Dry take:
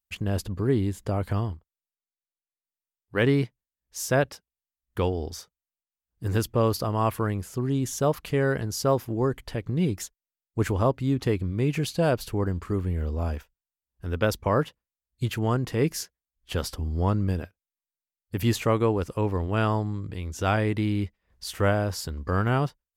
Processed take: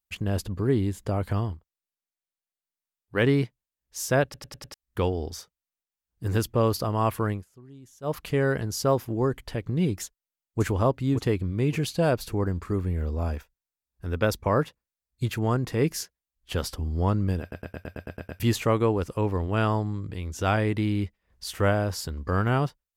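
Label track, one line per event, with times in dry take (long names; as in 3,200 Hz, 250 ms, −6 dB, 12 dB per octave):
4.240000	4.240000	stutter in place 0.10 s, 5 plays
7.320000	8.150000	duck −21.5 dB, fades 0.13 s
10.030000	10.610000	delay throw 570 ms, feedback 35%, level −7.5 dB
12.050000	15.800000	notch filter 3,000 Hz
17.410000	17.410000	stutter in place 0.11 s, 9 plays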